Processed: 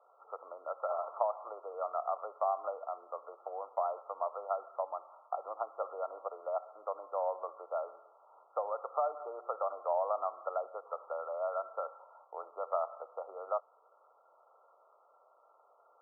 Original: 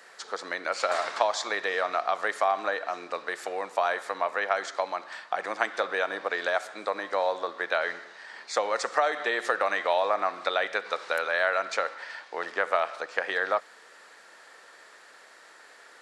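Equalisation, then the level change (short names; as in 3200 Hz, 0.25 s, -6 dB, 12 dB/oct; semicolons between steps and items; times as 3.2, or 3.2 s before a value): ladder high-pass 490 Hz, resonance 40%; brick-wall FIR low-pass 1400 Hz; -3.0 dB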